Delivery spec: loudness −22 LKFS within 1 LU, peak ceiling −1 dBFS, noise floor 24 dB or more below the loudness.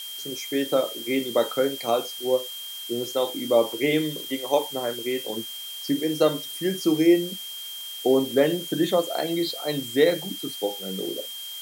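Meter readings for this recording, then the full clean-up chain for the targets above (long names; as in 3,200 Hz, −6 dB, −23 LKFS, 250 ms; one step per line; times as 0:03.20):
interfering tone 3,200 Hz; level of the tone −35 dBFS; background noise floor −37 dBFS; target noise floor −49 dBFS; integrated loudness −25.0 LKFS; sample peak −7.0 dBFS; target loudness −22.0 LKFS
→ notch filter 3,200 Hz, Q 30
noise reduction from a noise print 12 dB
level +3 dB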